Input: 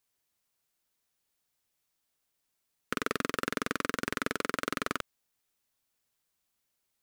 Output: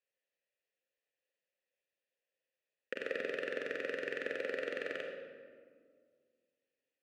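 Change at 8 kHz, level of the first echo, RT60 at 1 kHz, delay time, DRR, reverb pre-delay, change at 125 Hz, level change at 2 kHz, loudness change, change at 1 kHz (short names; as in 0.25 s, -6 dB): under -20 dB, none, 1.7 s, none, 2.0 dB, 30 ms, -18.5 dB, -4.5 dB, -5.5 dB, -17.0 dB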